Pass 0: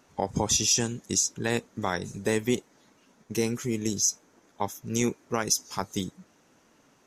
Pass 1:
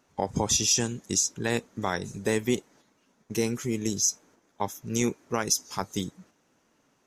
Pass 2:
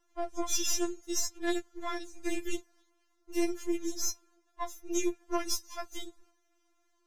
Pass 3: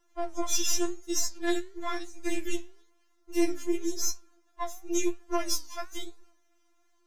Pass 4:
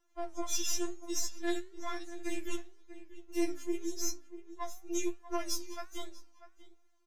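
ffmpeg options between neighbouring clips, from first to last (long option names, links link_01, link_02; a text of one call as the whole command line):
ffmpeg -i in.wav -af "agate=range=-6dB:threshold=-55dB:ratio=16:detection=peak" out.wav
ffmpeg -i in.wav -af "aeval=exprs='if(lt(val(0),0),0.447*val(0),val(0))':channel_layout=same,tremolo=f=130:d=0.571,afftfilt=real='re*4*eq(mod(b,16),0)':imag='im*4*eq(mod(b,16),0)':win_size=2048:overlap=0.75" out.wav
ffmpeg -i in.wav -af "flanger=delay=7.9:depth=7:regen=80:speed=0.96:shape=triangular,volume=7dB" out.wav
ffmpeg -i in.wav -filter_complex "[0:a]asplit=2[link_01][link_02];[link_02]adelay=641.4,volume=-13dB,highshelf=frequency=4000:gain=-14.4[link_03];[link_01][link_03]amix=inputs=2:normalize=0,volume=-6dB" out.wav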